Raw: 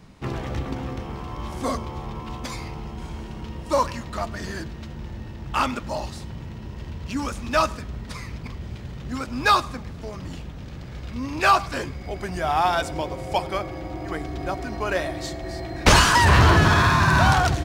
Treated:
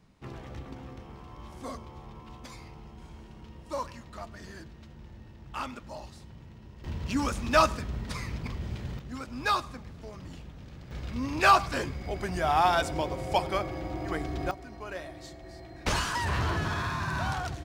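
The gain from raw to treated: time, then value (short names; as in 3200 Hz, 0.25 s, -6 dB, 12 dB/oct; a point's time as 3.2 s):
-13 dB
from 6.84 s -1 dB
from 8.99 s -9 dB
from 10.91 s -2.5 dB
from 14.51 s -14 dB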